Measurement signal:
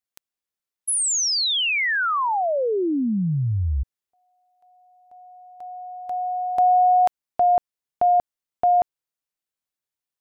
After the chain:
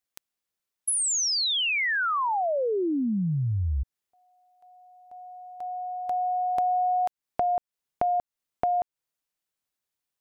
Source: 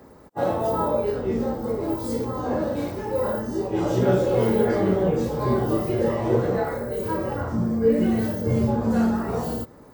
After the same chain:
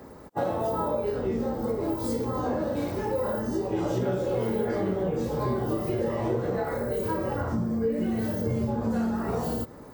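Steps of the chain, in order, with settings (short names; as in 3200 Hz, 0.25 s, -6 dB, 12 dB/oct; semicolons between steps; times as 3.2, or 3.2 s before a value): compressor 4:1, threshold -28 dBFS; gain +2.5 dB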